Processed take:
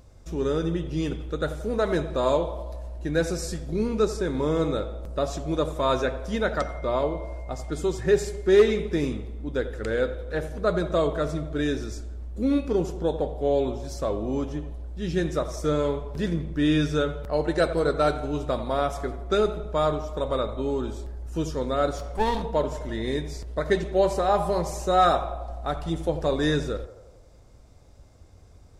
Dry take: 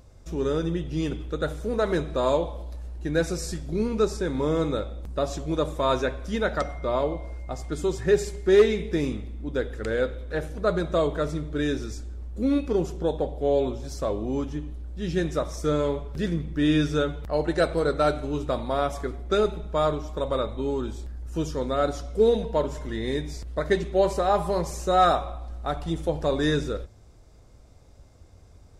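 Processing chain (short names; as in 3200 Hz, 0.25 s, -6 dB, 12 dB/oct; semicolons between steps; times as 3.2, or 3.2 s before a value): 21.98–22.42 minimum comb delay 0.88 ms; narrowing echo 86 ms, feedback 71%, band-pass 700 Hz, level -12.5 dB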